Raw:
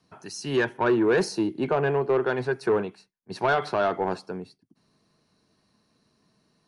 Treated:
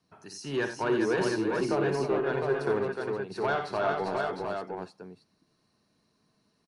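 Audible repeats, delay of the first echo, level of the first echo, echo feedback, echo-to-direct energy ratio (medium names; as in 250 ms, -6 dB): 5, 57 ms, -9.5 dB, no regular repeats, 0.0 dB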